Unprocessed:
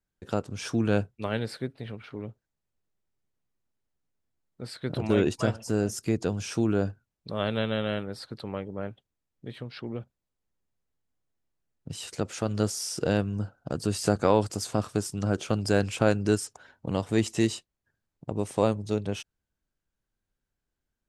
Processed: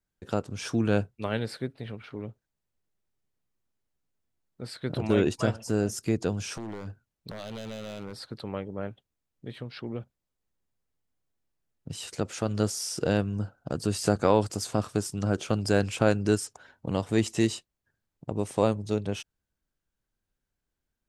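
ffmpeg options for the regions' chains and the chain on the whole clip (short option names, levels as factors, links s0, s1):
-filter_complex "[0:a]asettb=1/sr,asplit=3[s0][s1][s2];[s0]atrim=end=6.554[s3];[s1]atrim=start=6.55:end=8.17,asetpts=PTS-STARTPTS,afade=t=in:d=0.004:c=qsin,afade=t=out:st=1.616:d=0.004:c=qsin,acompressor=threshold=0.0316:ratio=6:attack=3.2:release=140:knee=1:detection=peak,aeval=exprs='0.0316*(abs(mod(val(0)/0.0316+3,4)-2)-1)':c=same[s4];[s2]atrim=start=8.166[s5];[s3][s4]acrossfade=d=0.004:c1=hsin:c2=qsin[s6];[s6][s5]acrossfade=d=0.004:c1=qsin:c2=hsin"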